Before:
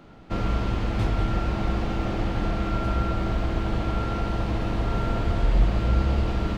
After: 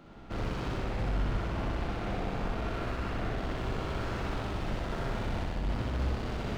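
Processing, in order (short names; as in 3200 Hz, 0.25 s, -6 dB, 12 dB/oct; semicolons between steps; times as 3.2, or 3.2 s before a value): 0.77–3.36 high shelf 5400 Hz -9.5 dB; overloaded stage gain 28 dB; flutter echo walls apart 10.7 m, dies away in 1.4 s; gain -4.5 dB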